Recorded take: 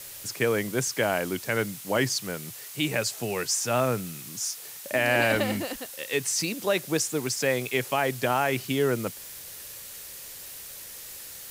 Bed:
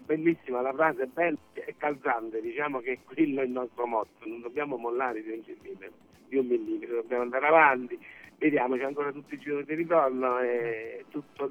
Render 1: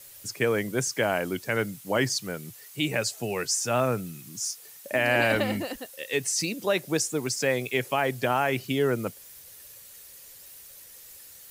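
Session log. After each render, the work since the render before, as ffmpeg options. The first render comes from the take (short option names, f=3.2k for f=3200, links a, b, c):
-af "afftdn=nr=9:nf=-42"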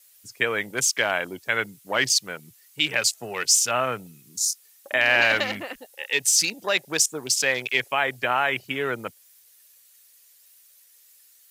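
-af "afwtdn=0.0126,tiltshelf=f=700:g=-9"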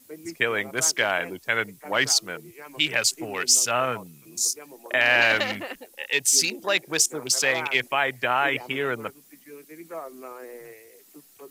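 -filter_complex "[1:a]volume=-13dB[a];[0:a][a]amix=inputs=2:normalize=0"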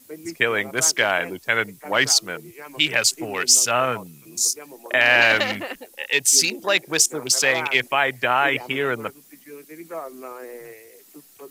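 -af "volume=3.5dB"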